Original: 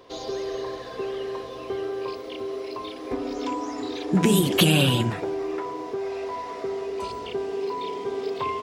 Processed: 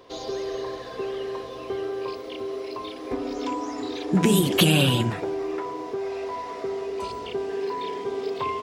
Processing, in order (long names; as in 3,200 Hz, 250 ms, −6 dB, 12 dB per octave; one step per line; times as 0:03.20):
0:07.49–0:08.02: parametric band 1,700 Hz +10.5 dB 0.25 octaves